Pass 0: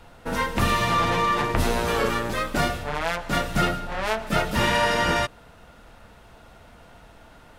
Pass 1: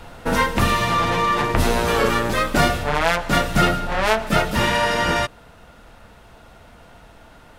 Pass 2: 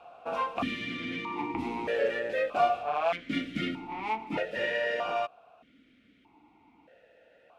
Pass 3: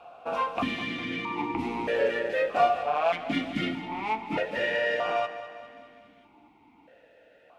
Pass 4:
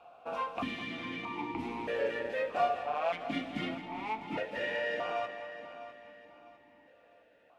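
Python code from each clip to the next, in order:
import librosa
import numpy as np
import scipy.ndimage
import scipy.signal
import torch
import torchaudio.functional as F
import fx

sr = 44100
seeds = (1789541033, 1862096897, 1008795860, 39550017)

y1 = fx.rider(x, sr, range_db=5, speed_s=0.5)
y1 = y1 * librosa.db_to_amplitude(4.5)
y2 = fx.vowel_held(y1, sr, hz=1.6)
y3 = fx.echo_feedback(y2, sr, ms=203, feedback_pct=56, wet_db=-13.0)
y3 = y3 * librosa.db_to_amplitude(2.5)
y4 = fx.echo_feedback(y3, sr, ms=653, feedback_pct=35, wet_db=-14.0)
y4 = y4 * librosa.db_to_amplitude(-7.0)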